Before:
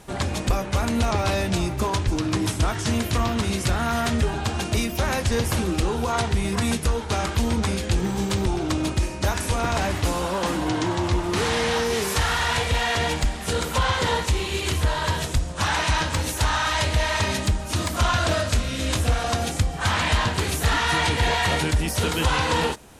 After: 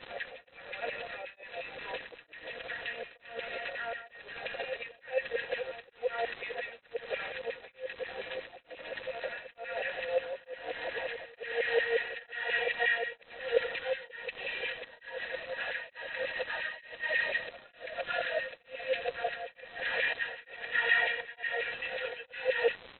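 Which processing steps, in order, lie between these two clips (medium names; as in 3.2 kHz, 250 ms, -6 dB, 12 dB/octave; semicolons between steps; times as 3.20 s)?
bass shelf 81 Hz +8.5 dB; comb 4.2 ms, depth 74%; compressor with a negative ratio -17 dBFS, ratio -0.5; LFO high-pass saw down 5.6 Hz 510–2400 Hz; vowel filter e; crackle 320 per s -29 dBFS; brick-wall FIR low-pass 4.1 kHz; on a send: reverse echo 447 ms -11 dB; on the sum: tremolo of two beating tones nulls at 1.1 Hz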